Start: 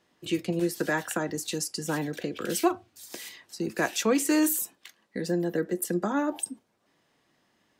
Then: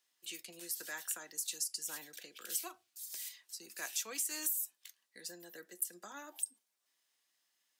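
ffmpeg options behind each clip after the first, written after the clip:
-af "aderivative,acompressor=threshold=-31dB:ratio=6,volume=-1.5dB"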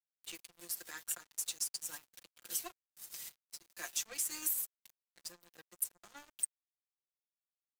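-af "aecho=1:1:5.7:0.82,aeval=exprs='sgn(val(0))*max(abs(val(0))-0.00562,0)':c=same"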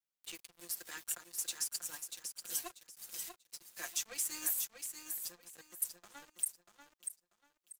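-af "aecho=1:1:639|1278|1917:0.447|0.112|0.0279"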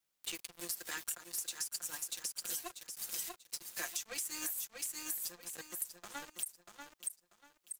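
-af "alimiter=level_in=2dB:limit=-24dB:level=0:latency=1:release=255,volume=-2dB,acompressor=threshold=-45dB:ratio=6,volume=9dB"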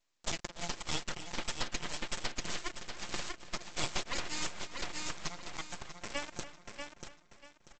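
-filter_complex "[0:a]aresample=16000,aeval=exprs='abs(val(0))':c=same,aresample=44100,asplit=2[a][b];[b]adelay=289,lowpass=f=4.1k:p=1,volume=-14dB,asplit=2[c][d];[d]adelay=289,lowpass=f=4.1k:p=1,volume=0.29,asplit=2[e][f];[f]adelay=289,lowpass=f=4.1k:p=1,volume=0.29[g];[a][c][e][g]amix=inputs=4:normalize=0,volume=8.5dB"

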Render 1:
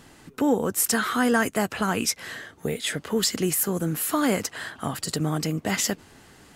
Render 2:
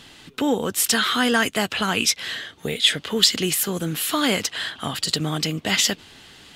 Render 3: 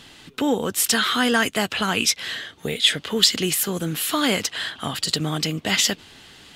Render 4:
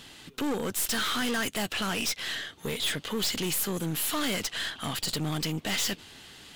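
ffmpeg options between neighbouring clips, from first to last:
-af "equalizer=f=3.4k:t=o:w=1.2:g=14.5"
-af anull
-af "crystalizer=i=0.5:c=0,aeval=exprs='(tanh(17.8*val(0)+0.45)-tanh(0.45))/17.8':c=same,volume=-1.5dB"

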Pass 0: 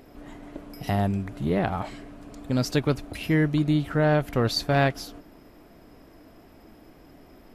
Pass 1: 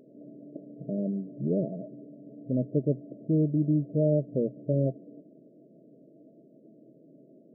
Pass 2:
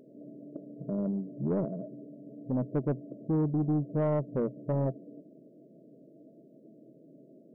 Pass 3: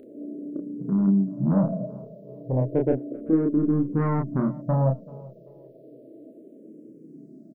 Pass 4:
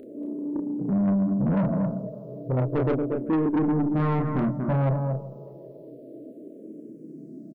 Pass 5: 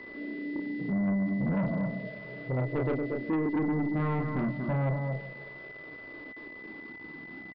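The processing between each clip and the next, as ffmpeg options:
-af "afftfilt=real='re*between(b*sr/4096,120,670)':imag='im*between(b*sr/4096,120,670)':win_size=4096:overlap=0.75,volume=-2.5dB"
-af "asoftclip=type=tanh:threshold=-22dB"
-filter_complex "[0:a]asplit=2[a][b];[b]adelay=31,volume=-3.5dB[c];[a][c]amix=inputs=2:normalize=0,aecho=1:1:387|774:0.0841|0.0269,asplit=2[d][e];[e]afreqshift=-0.32[f];[d][f]amix=inputs=2:normalize=1,volume=9dB"
-af "aecho=1:1:233:0.422,asoftclip=type=tanh:threshold=-23dB,volume=3.5dB"
-af "aeval=exprs='val(0)*gte(abs(val(0)),0.00794)':c=same,aresample=11025,aresample=44100,aeval=exprs='val(0)+0.0126*sin(2*PI*2000*n/s)':c=same,volume=-5.5dB"

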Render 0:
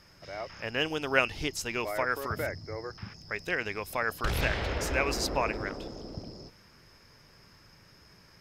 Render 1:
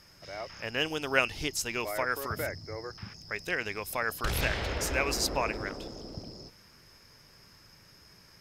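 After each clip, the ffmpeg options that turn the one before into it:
-af "equalizer=f=12k:w=0.32:g=7,volume=-1.5dB"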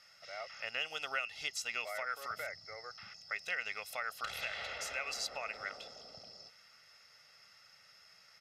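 -af "aecho=1:1:1.5:0.71,acompressor=threshold=-29dB:ratio=6,bandpass=f=2.6k:t=q:w=0.6:csg=0,volume=-2dB"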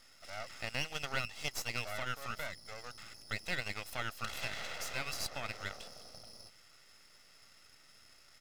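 -af "aeval=exprs='max(val(0),0)':c=same,volume=4dB"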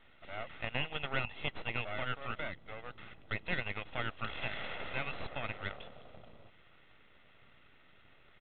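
-filter_complex "[0:a]asplit=2[a][b];[b]acrusher=samples=25:mix=1:aa=0.000001,volume=-11dB[c];[a][c]amix=inputs=2:normalize=0,aresample=8000,aresample=44100,volume=1dB"

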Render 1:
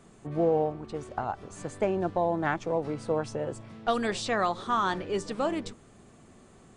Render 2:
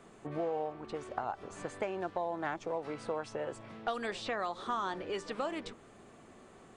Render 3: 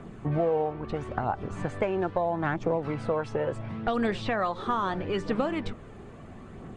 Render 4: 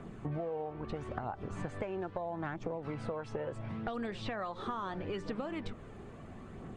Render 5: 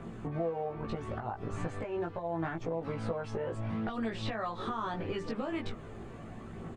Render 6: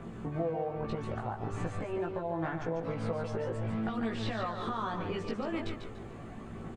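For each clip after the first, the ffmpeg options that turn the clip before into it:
-filter_complex "[0:a]bass=f=250:g=-9,treble=f=4k:g=-7,acrossover=split=940|4100[a][b][c];[a]acompressor=threshold=-39dB:ratio=4[d];[b]acompressor=threshold=-42dB:ratio=4[e];[c]acompressor=threshold=-55dB:ratio=4[f];[d][e][f]amix=inputs=3:normalize=0,volume=2dB"
-af "bass=f=250:g=11,treble=f=4k:g=-10,aphaser=in_gain=1:out_gain=1:delay=2.5:decay=0.32:speed=0.75:type=triangular,volume=6.5dB"
-af "acompressor=threshold=-31dB:ratio=6,volume=-3.5dB"
-filter_complex "[0:a]alimiter=level_in=4dB:limit=-24dB:level=0:latency=1:release=157,volume=-4dB,asplit=2[a][b];[b]adelay=18,volume=-2dB[c];[a][c]amix=inputs=2:normalize=0,volume=1.5dB"
-af "aecho=1:1:145|290|435|580:0.447|0.13|0.0376|0.0109"

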